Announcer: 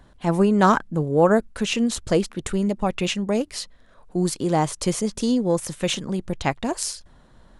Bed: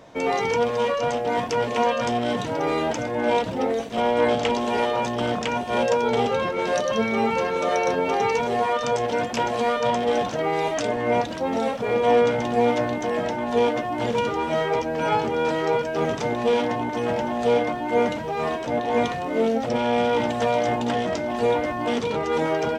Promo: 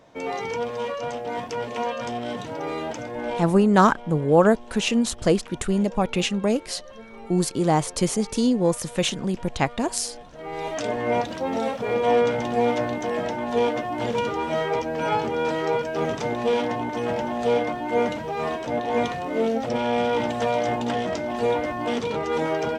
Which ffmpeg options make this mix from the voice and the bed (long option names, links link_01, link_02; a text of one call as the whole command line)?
ffmpeg -i stem1.wav -i stem2.wav -filter_complex "[0:a]adelay=3150,volume=0.5dB[link_01];[1:a]volume=13dB,afade=type=out:start_time=3.2:duration=0.5:silence=0.188365,afade=type=in:start_time=10.32:duration=0.6:silence=0.112202[link_02];[link_01][link_02]amix=inputs=2:normalize=0" out.wav